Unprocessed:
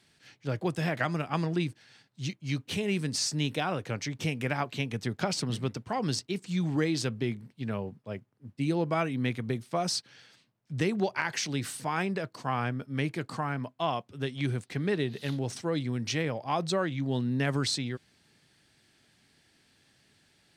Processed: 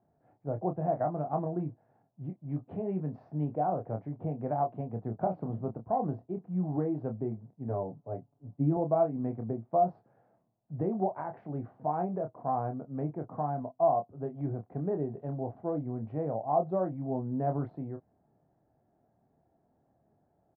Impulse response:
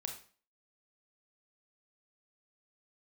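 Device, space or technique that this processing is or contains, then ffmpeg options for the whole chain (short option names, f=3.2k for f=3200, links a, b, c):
under water: -filter_complex "[0:a]asettb=1/sr,asplit=3[a][b][c];[a]atrim=end=7.684[d];[b]atrim=start=7.68:end=8.77,asetpts=PTS-STARTPTS,afade=t=in:d=0.004:c=qsin,afade=t=out:st=1.086:d=0.004:c=qsin,aecho=1:1:7:0.99,atrim=end_sample=48069[e];[c]atrim=start=8.766[f];[d][e]acrossfade=d=0.004:c1=hsin:c2=qsin[g];[g][f]acrossfade=d=0.004:c1=qsin:c2=hsin,lowpass=f=940:w=0.5412,lowpass=f=940:w=1.3066,equalizer=f=690:t=o:w=0.45:g=11.5,asplit=2[h][i];[i]adelay=27,volume=-6.5dB[j];[h][j]amix=inputs=2:normalize=0,asettb=1/sr,asplit=3[k][l][m];[k]atrim=end=2.454[n];[l]atrim=start=2.45:end=3.45,asetpts=PTS-STARTPTS,afade=t=in:d=0.004:c=qsin,afade=t=out:st=0.996:d=0.004:c=qsin,adynamicequalizer=threshold=0.00282:dfrequency=1800:dqfactor=0.7:tfrequency=1800:tqfactor=0.7:attack=5:release=100:ratio=0.375:range=2.5:mode=boostabove:tftype=highshelf[o];[m]atrim=start=3.446[p];[n][o]acrossfade=d=0.004:c1=hsin:c2=qsin[q];[q][p]acrossfade=d=0.004:c1=qsin:c2=hsin,volume=-4dB"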